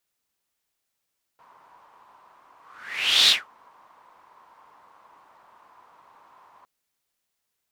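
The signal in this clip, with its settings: whoosh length 5.26 s, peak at 1.90 s, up 0.74 s, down 0.19 s, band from 1 kHz, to 3.8 kHz, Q 5.4, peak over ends 39 dB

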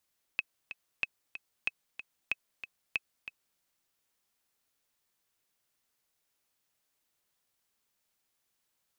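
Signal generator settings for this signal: metronome 187 bpm, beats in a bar 2, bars 5, 2.57 kHz, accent 11.5 dB -16 dBFS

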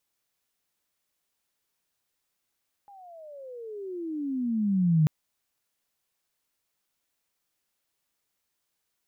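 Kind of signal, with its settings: gliding synth tone sine, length 2.19 s, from 822 Hz, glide -29.5 st, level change +30 dB, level -17 dB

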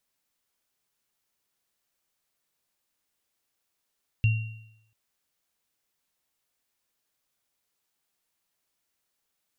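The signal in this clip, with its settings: sine partials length 0.69 s, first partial 110 Hz, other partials 2.75 kHz, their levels -11.5 dB, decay 0.77 s, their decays 0.81 s, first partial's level -16.5 dB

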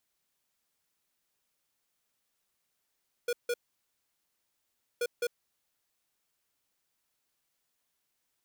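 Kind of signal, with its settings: beep pattern square 481 Hz, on 0.05 s, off 0.16 s, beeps 2, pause 1.47 s, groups 2, -30 dBFS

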